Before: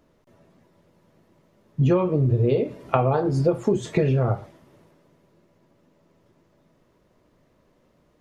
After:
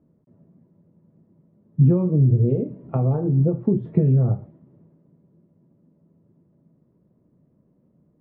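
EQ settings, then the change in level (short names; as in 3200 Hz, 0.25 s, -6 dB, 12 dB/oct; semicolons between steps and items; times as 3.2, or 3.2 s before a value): band-pass 170 Hz, Q 1.5; air absorption 310 m; +7.0 dB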